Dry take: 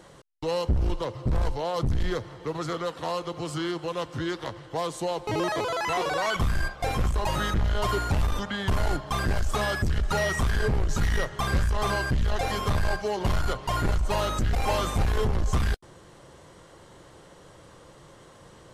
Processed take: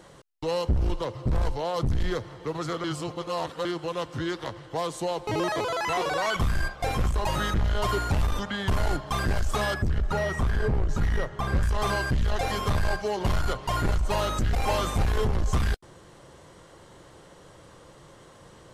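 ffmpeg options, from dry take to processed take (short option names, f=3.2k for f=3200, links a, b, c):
-filter_complex "[0:a]asettb=1/sr,asplit=3[a][b][c];[a]atrim=end=9.744[d];[b]atrim=start=9.74:end=11.63,asetpts=PTS-STARTPTS,afade=t=in:d=0.004:c=qsin,afade=t=out:st=1.886:d=0.004:c=qsin,highshelf=f=2.3k:g=-10.5[e];[c]atrim=start=11.626[f];[d][e]acrossfade=d=0.004:c1=hsin:c2=qsin[g];[g][f]acrossfade=d=0.004:c1=qsin:c2=hsin,asplit=3[h][i][j];[h]atrim=end=2.842[k];[i]atrim=start=2.838:end=3.652,asetpts=PTS-STARTPTS,areverse[l];[j]atrim=start=3.648[m];[k][l]acrossfade=d=0.004:c1=hsin:c2=hsin[n];[n][m]acrossfade=d=0.004:c1=hsin:c2=hsin"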